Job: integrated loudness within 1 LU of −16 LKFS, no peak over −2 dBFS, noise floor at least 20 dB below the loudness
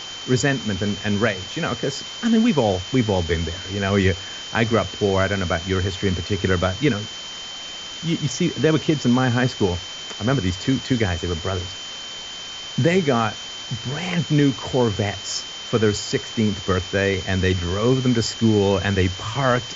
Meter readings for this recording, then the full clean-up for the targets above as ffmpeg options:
interfering tone 3,100 Hz; level of the tone −33 dBFS; background noise floor −34 dBFS; target noise floor −42 dBFS; integrated loudness −22.0 LKFS; sample peak −4.5 dBFS; target loudness −16.0 LKFS
→ -af "bandreject=frequency=3100:width=30"
-af "afftdn=noise_reduction=8:noise_floor=-34"
-af "volume=6dB,alimiter=limit=-2dB:level=0:latency=1"

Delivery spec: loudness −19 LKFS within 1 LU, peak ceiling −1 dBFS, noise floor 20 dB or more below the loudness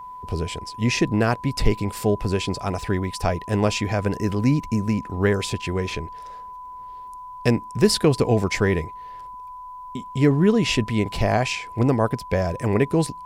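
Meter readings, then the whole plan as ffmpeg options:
interfering tone 1,000 Hz; level of the tone −35 dBFS; integrated loudness −22.5 LKFS; sample peak −3.5 dBFS; target loudness −19.0 LKFS
→ -af "bandreject=frequency=1000:width=30"
-af "volume=3.5dB,alimiter=limit=-1dB:level=0:latency=1"

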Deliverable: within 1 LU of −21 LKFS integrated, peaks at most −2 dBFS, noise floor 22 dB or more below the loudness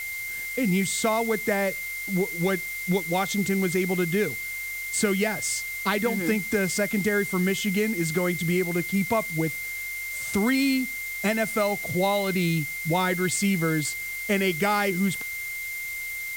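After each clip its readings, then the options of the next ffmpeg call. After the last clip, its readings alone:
interfering tone 2,100 Hz; level of the tone −31 dBFS; background noise floor −33 dBFS; target noise floor −48 dBFS; integrated loudness −25.5 LKFS; sample peak −10.0 dBFS; target loudness −21.0 LKFS
→ -af "bandreject=frequency=2100:width=30"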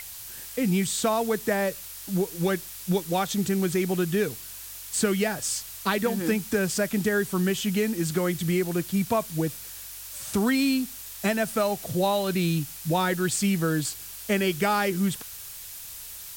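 interfering tone none found; background noise floor −41 dBFS; target noise floor −48 dBFS
→ -af "afftdn=noise_reduction=7:noise_floor=-41"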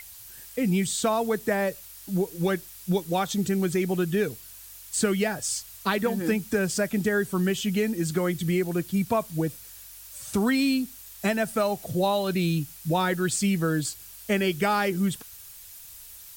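background noise floor −46 dBFS; target noise floor −49 dBFS
→ -af "afftdn=noise_reduction=6:noise_floor=-46"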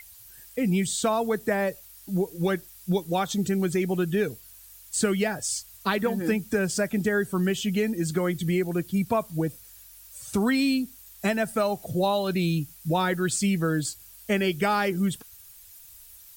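background noise floor −49 dBFS; integrated loudness −26.5 LKFS; sample peak −11.0 dBFS; target loudness −21.0 LKFS
→ -af "volume=5.5dB"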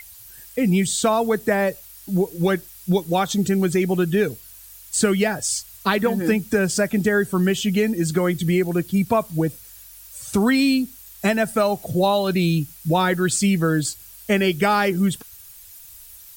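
integrated loudness −21.0 LKFS; sample peak −5.5 dBFS; background noise floor −44 dBFS

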